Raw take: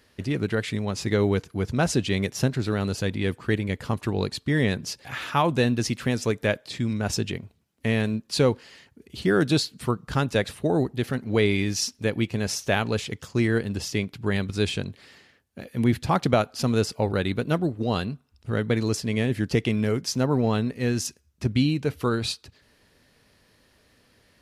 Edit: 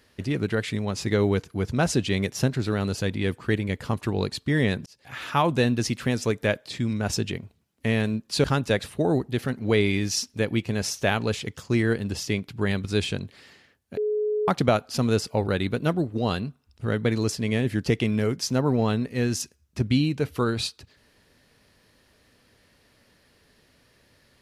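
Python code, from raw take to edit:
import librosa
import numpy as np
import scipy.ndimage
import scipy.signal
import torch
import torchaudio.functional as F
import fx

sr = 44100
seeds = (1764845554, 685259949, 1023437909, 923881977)

y = fx.edit(x, sr, fx.fade_in_span(start_s=4.86, length_s=0.47),
    fx.cut(start_s=8.44, length_s=1.65),
    fx.bleep(start_s=15.62, length_s=0.51, hz=423.0, db=-22.0), tone=tone)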